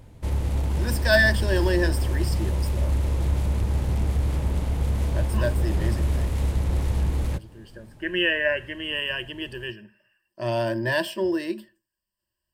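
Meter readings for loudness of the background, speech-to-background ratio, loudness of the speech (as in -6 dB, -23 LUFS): -26.0 LUFS, 0.0 dB, -26.0 LUFS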